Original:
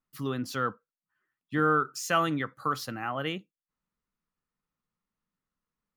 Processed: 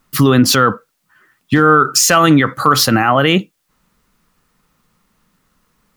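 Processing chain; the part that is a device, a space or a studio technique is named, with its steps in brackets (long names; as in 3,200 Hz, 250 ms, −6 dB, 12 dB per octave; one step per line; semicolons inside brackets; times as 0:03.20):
loud club master (downward compressor 2.5 to 1, threshold −28 dBFS, peak gain reduction 5.5 dB; hard clipping −20 dBFS, distortion −32 dB; boost into a limiter +28.5 dB)
level −1 dB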